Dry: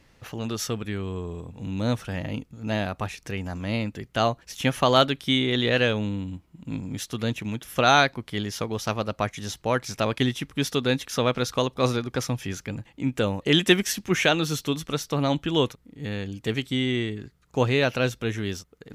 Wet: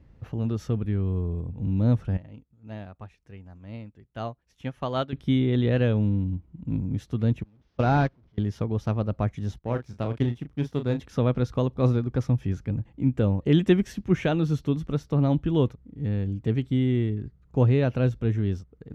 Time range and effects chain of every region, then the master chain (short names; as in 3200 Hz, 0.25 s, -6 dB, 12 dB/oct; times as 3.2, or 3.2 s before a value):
2.17–5.13 low shelf 490 Hz -9.5 dB + upward expander, over -45 dBFS
7.43–8.38 delta modulation 32 kbps, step -25 dBFS + gate -23 dBFS, range -32 dB + short-mantissa float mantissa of 6-bit
9.58–11 power-law curve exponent 1.4 + doubler 34 ms -8.5 dB
whole clip: HPF 47 Hz; tilt -4.5 dB/oct; gain -7 dB